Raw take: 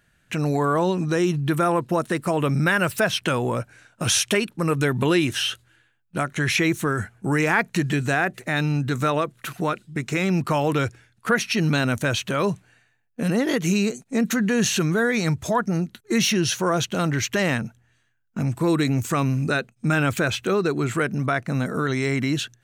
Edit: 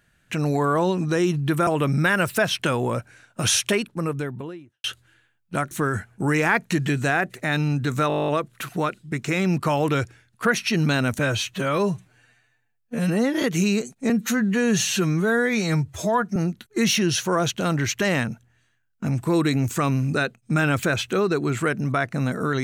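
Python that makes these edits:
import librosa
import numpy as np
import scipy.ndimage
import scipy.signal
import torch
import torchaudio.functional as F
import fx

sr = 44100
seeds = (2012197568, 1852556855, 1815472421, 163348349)

y = fx.studio_fade_out(x, sr, start_s=4.2, length_s=1.26)
y = fx.edit(y, sr, fx.cut(start_s=1.67, length_s=0.62),
    fx.cut(start_s=6.33, length_s=0.42),
    fx.stutter(start_s=9.12, slice_s=0.02, count=11),
    fx.stretch_span(start_s=12.03, length_s=1.49, factor=1.5),
    fx.stretch_span(start_s=14.19, length_s=1.51, factor=1.5), tone=tone)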